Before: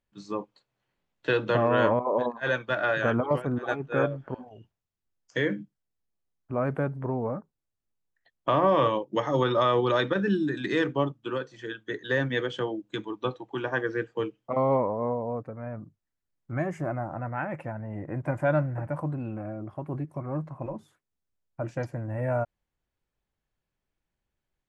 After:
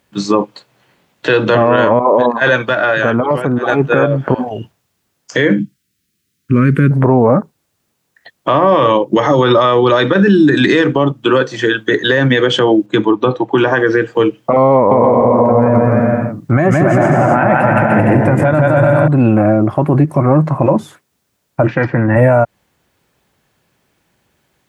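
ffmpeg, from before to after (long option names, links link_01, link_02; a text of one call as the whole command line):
ffmpeg -i in.wav -filter_complex "[0:a]asettb=1/sr,asplit=3[link_01][link_02][link_03];[link_01]atrim=end=2.634[link_04];[link_02]atrim=start=2.63:end=3.7,asetpts=PTS-STARTPTS,afade=type=in:duration=0.004:curve=qsin,afade=type=out:start_time=1.066:duration=0.004:curve=qsin,acompressor=threshold=-42dB:ratio=2.5:attack=3.2:release=140:knee=1:detection=peak[link_05];[link_03]atrim=start=3.696[link_06];[link_04][link_05]acrossfade=duration=0.004:curve1=hsin:curve2=qsin[link_07];[link_07][link_06]acrossfade=duration=0.004:curve1=qsin:curve2=hsin,asettb=1/sr,asplit=3[link_08][link_09][link_10];[link_08]atrim=end=5.594[link_11];[link_09]atrim=start=5.59:end=6.91,asetpts=PTS-STARTPTS,afade=type=in:duration=0.004:curve=qsin,afade=type=out:start_time=1.316:duration=0.004:curve=qsin,asuperstop=centerf=740:order=4:qfactor=0.52[link_12];[link_10]atrim=start=6.906[link_13];[link_11][link_12]acrossfade=duration=0.004:curve1=hsin:curve2=qsin[link_14];[link_14][link_13]acrossfade=duration=0.004:curve1=qsin:curve2=hsin,asettb=1/sr,asplit=3[link_15][link_16][link_17];[link_15]atrim=end=12.864[link_18];[link_16]atrim=start=12.86:end=13.58,asetpts=PTS-STARTPTS,afade=type=in:duration=0.004:curve=qsin,afade=type=out:start_time=0.716:duration=0.004:curve=qsin,highshelf=frequency=2500:gain=-9.5[link_19];[link_17]atrim=start=13.576[link_20];[link_18][link_19]acrossfade=duration=0.004:curve1=hsin:curve2=qsin[link_21];[link_21][link_20]acrossfade=duration=0.004:curve1=qsin:curve2=hsin,asettb=1/sr,asplit=3[link_22][link_23][link_24];[link_22]atrim=end=14.744[link_25];[link_23]atrim=start=14.74:end=19.08,asetpts=PTS-STARTPTS,afade=type=in:duration=0.004:curve=qsin,afade=type=out:start_time=4.336:duration=0.004:curve=qsin,aecho=1:1:170|297.5|393.1|464.8|518.6|559:0.794|0.631|0.501|0.398|0.316|0.251,atrim=end_sample=191394[link_26];[link_24]atrim=start=19.076[link_27];[link_25][link_26]acrossfade=duration=0.004:curve1=hsin:curve2=qsin[link_28];[link_28][link_27]acrossfade=duration=0.004:curve1=qsin:curve2=hsin,asplit=3[link_29][link_30][link_31];[link_29]afade=type=out:start_time=21.66:duration=0.02[link_32];[link_30]highpass=130,equalizer=frequency=630:width_type=q:width=4:gain=-10,equalizer=frequency=1300:width_type=q:width=4:gain=4,equalizer=frequency=1900:width_type=q:width=4:gain=7,lowpass=frequency=3400:width=0.5412,lowpass=frequency=3400:width=1.3066,afade=type=in:start_time=21.66:duration=0.02,afade=type=out:start_time=22.15:duration=0.02[link_33];[link_31]afade=type=in:start_time=22.15:duration=0.02[link_34];[link_32][link_33][link_34]amix=inputs=3:normalize=0,highpass=110,acompressor=threshold=-29dB:ratio=6,alimiter=level_in=27dB:limit=-1dB:release=50:level=0:latency=1,volume=-1dB" out.wav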